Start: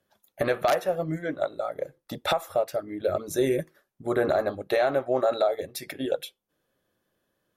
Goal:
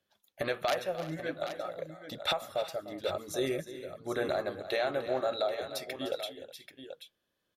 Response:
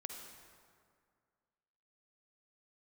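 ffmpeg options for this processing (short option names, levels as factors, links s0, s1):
-af "equalizer=f=3600:t=o:w=1.7:g=8.5,aecho=1:1:301|366|784:0.2|0.119|0.299,volume=0.376"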